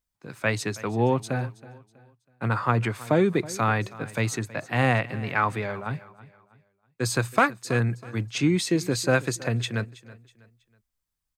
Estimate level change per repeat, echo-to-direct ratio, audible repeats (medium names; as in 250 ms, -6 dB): -9.0 dB, -18.5 dB, 2